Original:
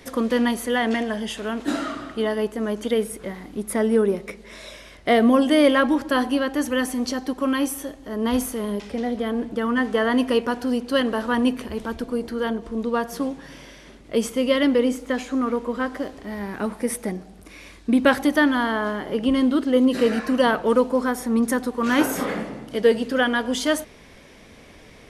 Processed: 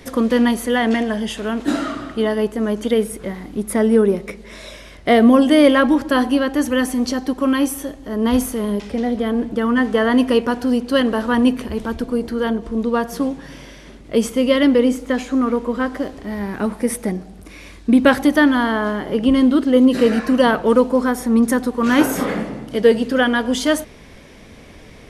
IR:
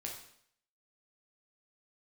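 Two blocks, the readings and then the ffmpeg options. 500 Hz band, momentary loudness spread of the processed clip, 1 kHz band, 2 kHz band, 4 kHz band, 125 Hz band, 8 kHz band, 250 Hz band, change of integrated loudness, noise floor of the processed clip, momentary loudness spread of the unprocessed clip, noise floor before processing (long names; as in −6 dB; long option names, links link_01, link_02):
+4.0 dB, 12 LU, +3.5 dB, +3.0 dB, +3.0 dB, +6.5 dB, +3.0 dB, +5.5 dB, +5.0 dB, −41 dBFS, 12 LU, −47 dBFS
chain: -af "lowshelf=frequency=280:gain=5,volume=3dB"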